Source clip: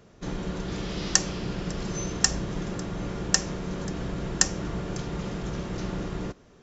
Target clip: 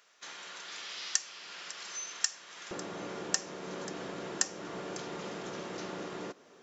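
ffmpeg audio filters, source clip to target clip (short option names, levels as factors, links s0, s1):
-af "asetnsamples=n=441:p=0,asendcmd='2.71 highpass f 350',highpass=1500,acompressor=threshold=0.00708:ratio=1.5,volume=1.12"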